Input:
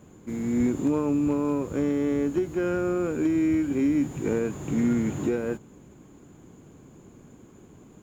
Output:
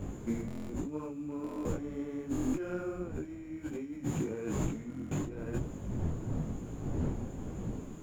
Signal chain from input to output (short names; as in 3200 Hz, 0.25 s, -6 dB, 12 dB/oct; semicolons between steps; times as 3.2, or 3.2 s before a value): wind noise 190 Hz -34 dBFS; negative-ratio compressor -33 dBFS, ratio -1; stuck buffer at 0.46/1.42/2.31/4.88, samples 1024, times 9; detuned doubles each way 36 cents